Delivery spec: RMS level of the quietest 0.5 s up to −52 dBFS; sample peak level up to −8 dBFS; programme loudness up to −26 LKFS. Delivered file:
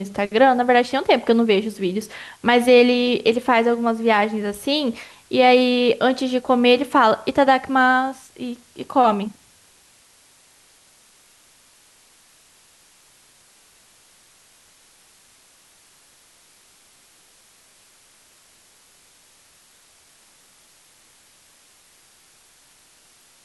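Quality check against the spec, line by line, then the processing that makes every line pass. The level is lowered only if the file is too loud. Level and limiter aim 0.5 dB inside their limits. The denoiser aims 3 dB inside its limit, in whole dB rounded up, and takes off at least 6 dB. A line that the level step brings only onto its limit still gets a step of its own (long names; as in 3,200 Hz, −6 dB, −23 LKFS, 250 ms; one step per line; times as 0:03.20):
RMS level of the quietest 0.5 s −54 dBFS: in spec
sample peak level −4.5 dBFS: out of spec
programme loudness −18.0 LKFS: out of spec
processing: level −8.5 dB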